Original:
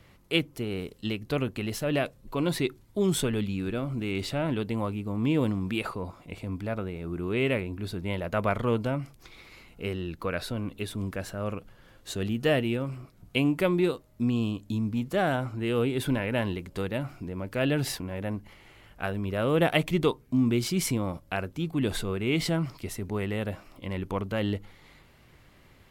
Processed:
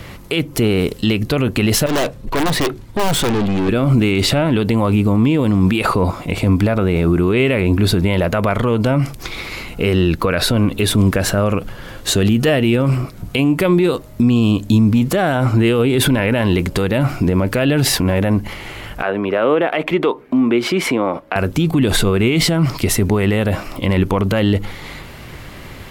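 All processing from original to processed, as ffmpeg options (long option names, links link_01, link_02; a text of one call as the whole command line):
ffmpeg -i in.wav -filter_complex "[0:a]asettb=1/sr,asplit=3[link_01][link_02][link_03];[link_01]atrim=end=1.864[link_04];[link_02]atrim=start=1.86:end=3.69,asetpts=PTS-STARTPTS,afade=type=in:duration=0.004:curve=qsin,afade=type=out:start_time=1.826:duration=0.004:curve=qsin,highshelf=frequency=7000:gain=-10,aeval=exprs='(mod(8.41*val(0)+1,2)-1)/8.41':channel_layout=same,aeval=exprs='(tanh(79.4*val(0)+0.4)-tanh(0.4))/79.4':channel_layout=same[link_05];[link_03]atrim=start=3.686[link_06];[link_04][link_05]acrossfade=duration=0.004:curve1=hsin:curve2=qsin[link_07];[link_07][link_06]acrossfade=duration=0.004:curve1=qsin:curve2=hsin,asettb=1/sr,asplit=3[link_08][link_09][link_10];[link_08]atrim=end=19.024[link_11];[link_09]atrim=start=19.02:end=21.36,asetpts=PTS-STARTPTS,afade=type=in:duration=0.004:curve=qsin,afade=type=out:start_time=2.336:duration=0.004:curve=qsin,acrossover=split=260 2900:gain=0.0631 1 0.1[link_12][link_13][link_14];[link_12][link_13][link_14]amix=inputs=3:normalize=0,acompressor=threshold=-39dB:ratio=2:attack=3.2:release=140:knee=1:detection=peak[link_15];[link_10]atrim=start=21.356[link_16];[link_11][link_15]acrossfade=duration=0.004:curve1=hsin:curve2=qsin[link_17];[link_17][link_16]acrossfade=duration=0.004:curve1=qsin:curve2=hsin,acompressor=threshold=-28dB:ratio=6,alimiter=level_in=27.5dB:limit=-1dB:release=50:level=0:latency=1,volume=-5dB" out.wav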